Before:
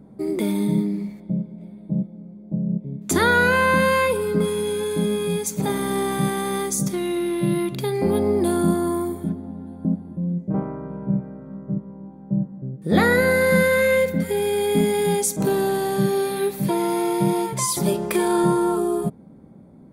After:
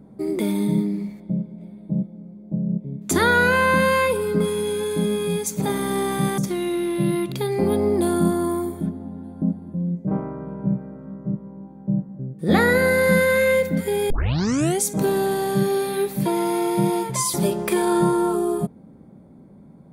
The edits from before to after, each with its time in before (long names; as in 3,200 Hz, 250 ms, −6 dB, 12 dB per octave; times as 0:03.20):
0:06.38–0:06.81: remove
0:14.53: tape start 0.70 s